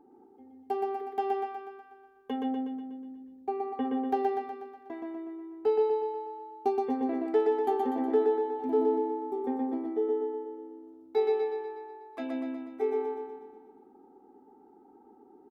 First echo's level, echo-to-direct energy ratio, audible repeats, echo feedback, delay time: -3.0 dB, -1.5 dB, 7, 56%, 122 ms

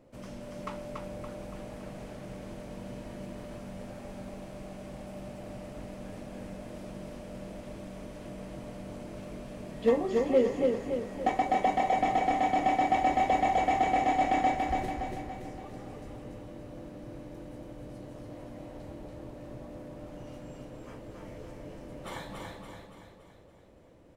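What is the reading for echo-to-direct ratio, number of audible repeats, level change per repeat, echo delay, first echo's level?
-2.0 dB, 6, -6.0 dB, 284 ms, -3.5 dB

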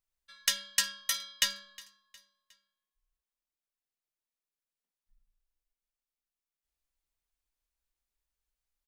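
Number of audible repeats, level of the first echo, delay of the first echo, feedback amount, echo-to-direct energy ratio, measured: 2, -22.0 dB, 361 ms, 45%, -21.0 dB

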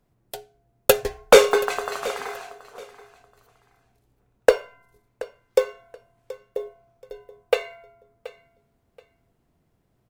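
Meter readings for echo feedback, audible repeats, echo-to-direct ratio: 24%, 2, -17.5 dB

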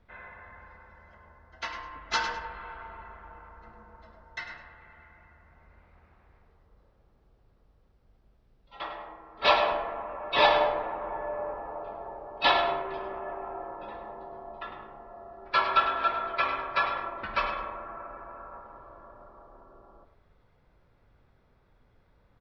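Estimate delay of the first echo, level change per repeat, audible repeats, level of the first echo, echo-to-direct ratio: 103 ms, -12.0 dB, 2, -10.0 dB, -9.5 dB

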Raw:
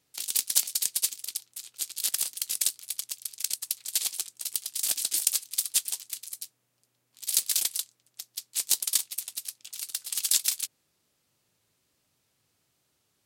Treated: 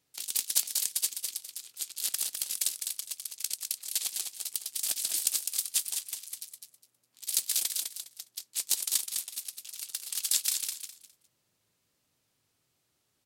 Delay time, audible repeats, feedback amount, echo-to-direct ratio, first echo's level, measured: 205 ms, 3, 22%, -6.0 dB, -6.0 dB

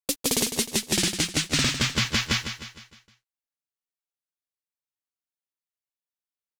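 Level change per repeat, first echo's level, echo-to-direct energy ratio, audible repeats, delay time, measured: -6.5 dB, -9.0 dB, -8.0 dB, 4, 154 ms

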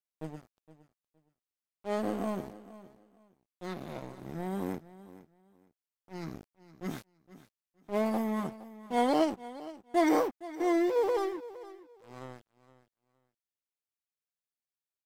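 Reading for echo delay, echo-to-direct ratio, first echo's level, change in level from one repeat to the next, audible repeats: 465 ms, -17.0 dB, -17.0 dB, -13.0 dB, 2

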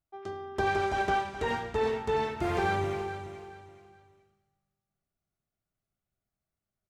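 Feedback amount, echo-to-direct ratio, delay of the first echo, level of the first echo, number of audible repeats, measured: 30%, -10.5 dB, 423 ms, -11.0 dB, 3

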